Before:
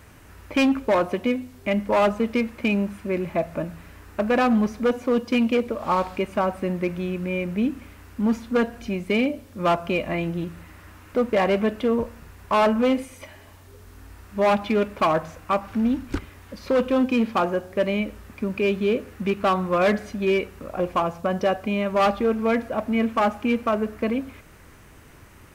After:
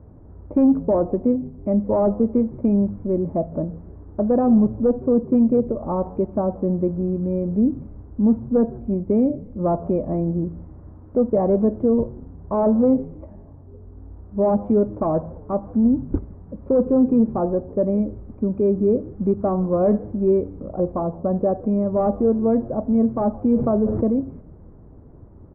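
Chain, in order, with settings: Bessel low-pass 500 Hz, order 4; frequency-shifting echo 0.161 s, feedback 61%, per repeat -100 Hz, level -22 dB; 23.56–24.08 fast leveller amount 70%; gain +5.5 dB

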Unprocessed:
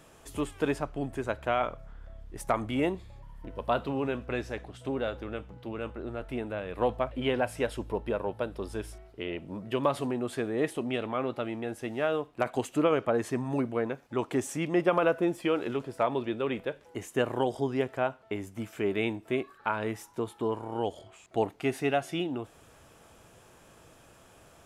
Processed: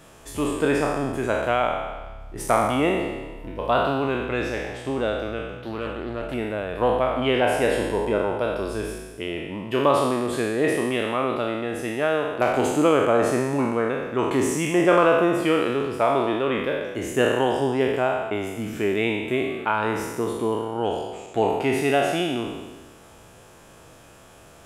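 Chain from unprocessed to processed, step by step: spectral trails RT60 1.32 s; 5.6–6.34 Doppler distortion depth 0.23 ms; gain +4.5 dB

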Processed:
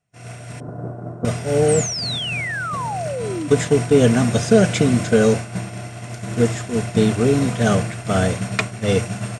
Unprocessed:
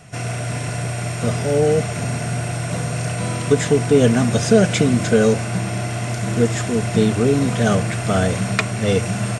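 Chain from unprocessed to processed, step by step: expander -16 dBFS; 0.6–1.25 EQ curve 100 Hz 0 dB, 300 Hz +12 dB, 1400 Hz -2 dB, 2300 Hz -28 dB; 1.68–3.48 painted sound fall 280–9000 Hz -26 dBFS

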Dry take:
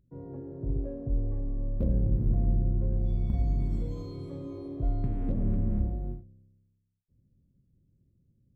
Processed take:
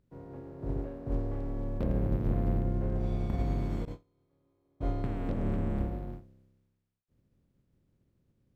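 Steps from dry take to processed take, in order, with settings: spectral contrast lowered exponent 0.57; 3.85–6.13 gate -32 dBFS, range -30 dB; LPF 1200 Hz 6 dB/oct; gain -3.5 dB

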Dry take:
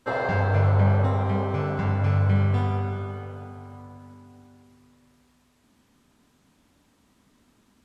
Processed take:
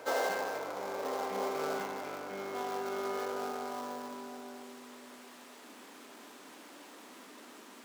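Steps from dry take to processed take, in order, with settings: switching dead time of 0.13 ms; reverse; compressor 16:1, threshold -34 dBFS, peak gain reduction 19 dB; reverse; power-law curve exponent 0.7; HPF 310 Hz 24 dB/oct; reverse echo 0.574 s -10 dB; gain +5 dB

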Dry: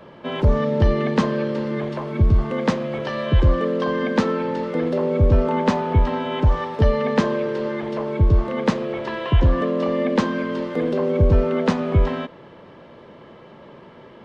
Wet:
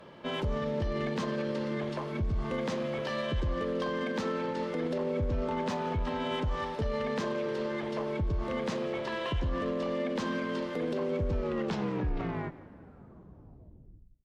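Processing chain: tape stop at the end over 2.91 s; high shelf 3400 Hz +8 dB; limiter -16.5 dBFS, peak gain reduction 10.5 dB; added harmonics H 6 -28 dB, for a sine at -16.5 dBFS; on a send: feedback echo 0.174 s, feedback 33%, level -19 dB; on the sum: gain -7.5 dB

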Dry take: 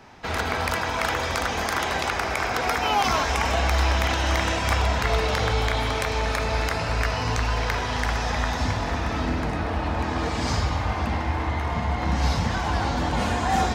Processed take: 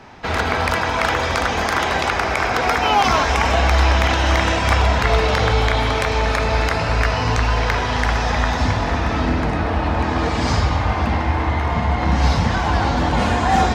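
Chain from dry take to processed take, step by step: high shelf 8100 Hz -11 dB; gain +6.5 dB

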